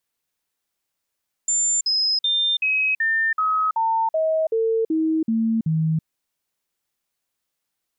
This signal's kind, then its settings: stepped sine 7200 Hz down, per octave 2, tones 12, 0.33 s, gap 0.05 s -17.5 dBFS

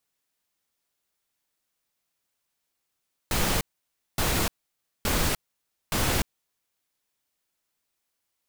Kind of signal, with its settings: noise bursts pink, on 0.30 s, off 0.57 s, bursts 4, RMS -24.5 dBFS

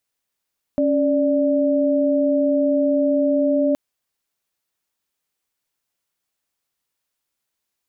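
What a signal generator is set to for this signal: chord C#4/D5 sine, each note -18 dBFS 2.97 s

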